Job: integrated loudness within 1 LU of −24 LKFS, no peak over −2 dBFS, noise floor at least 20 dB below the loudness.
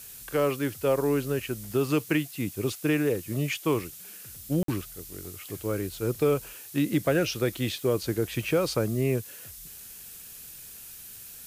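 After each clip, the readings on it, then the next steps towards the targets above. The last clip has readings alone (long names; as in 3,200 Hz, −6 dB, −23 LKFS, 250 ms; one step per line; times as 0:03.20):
number of dropouts 1; longest dropout 53 ms; background noise floor −45 dBFS; target noise floor −48 dBFS; integrated loudness −28.0 LKFS; sample peak −12.5 dBFS; target loudness −24.0 LKFS
→ repair the gap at 0:04.63, 53 ms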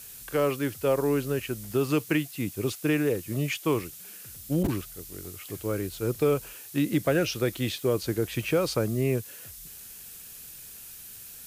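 number of dropouts 0; background noise floor −45 dBFS; target noise floor −48 dBFS
→ noise reduction from a noise print 6 dB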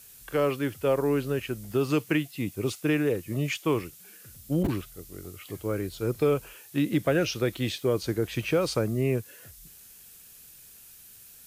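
background noise floor −51 dBFS; integrated loudness −28.0 LKFS; sample peak −12.5 dBFS; target loudness −24.0 LKFS
→ level +4 dB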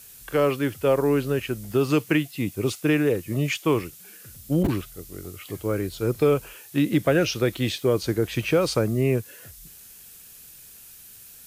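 integrated loudness −24.0 LKFS; sample peak −8.5 dBFS; background noise floor −47 dBFS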